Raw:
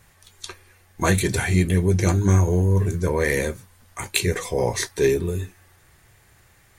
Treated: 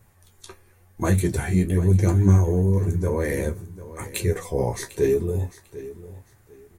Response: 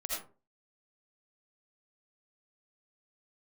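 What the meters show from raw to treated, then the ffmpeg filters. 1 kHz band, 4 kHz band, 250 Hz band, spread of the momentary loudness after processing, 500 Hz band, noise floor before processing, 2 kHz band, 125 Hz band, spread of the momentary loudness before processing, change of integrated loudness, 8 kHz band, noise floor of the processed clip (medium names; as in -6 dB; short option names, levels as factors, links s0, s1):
-4.5 dB, -10.5 dB, 0.0 dB, 20 LU, -1.5 dB, -56 dBFS, -8.0 dB, +0.5 dB, 20 LU, -1.0 dB, -6.5 dB, -57 dBFS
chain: -af "flanger=delay=9:depth=6.5:regen=40:speed=0.95:shape=sinusoidal,equalizer=f=3500:w=0.38:g=-11,aecho=1:1:747|1494:0.158|0.0365,volume=1.58"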